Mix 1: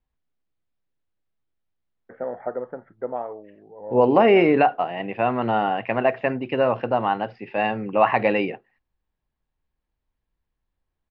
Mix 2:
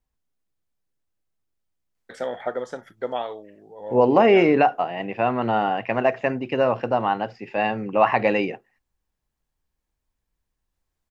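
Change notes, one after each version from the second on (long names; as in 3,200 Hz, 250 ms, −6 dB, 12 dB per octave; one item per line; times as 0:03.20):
first voice: remove Gaussian smoothing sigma 5.8 samples
master: remove low-pass filter 4,100 Hz 24 dB per octave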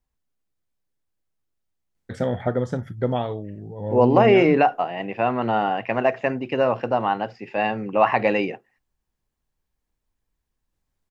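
first voice: remove high-pass filter 520 Hz 12 dB per octave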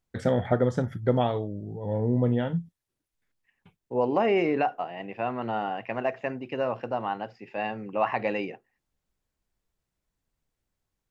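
first voice: entry −1.95 s
second voice −8.0 dB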